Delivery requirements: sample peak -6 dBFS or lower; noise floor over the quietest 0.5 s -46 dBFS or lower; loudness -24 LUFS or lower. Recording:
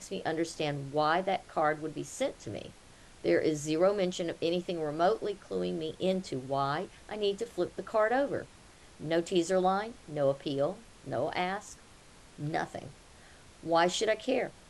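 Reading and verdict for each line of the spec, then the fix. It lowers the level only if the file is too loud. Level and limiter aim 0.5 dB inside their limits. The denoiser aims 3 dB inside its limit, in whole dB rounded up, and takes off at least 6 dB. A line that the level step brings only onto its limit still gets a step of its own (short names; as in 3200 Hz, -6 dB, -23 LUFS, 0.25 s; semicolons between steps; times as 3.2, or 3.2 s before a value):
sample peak -13.0 dBFS: OK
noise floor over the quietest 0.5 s -55 dBFS: OK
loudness -31.5 LUFS: OK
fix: none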